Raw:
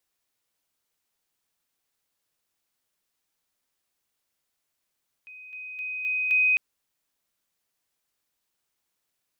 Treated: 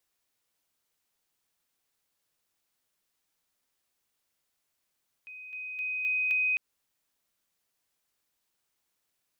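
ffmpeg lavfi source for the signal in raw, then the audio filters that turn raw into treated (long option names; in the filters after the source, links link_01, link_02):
-f lavfi -i "aevalsrc='pow(10,(-42+6*floor(t/0.26))/20)*sin(2*PI*2510*t)':duration=1.3:sample_rate=44100"
-af "acompressor=threshold=-26dB:ratio=6"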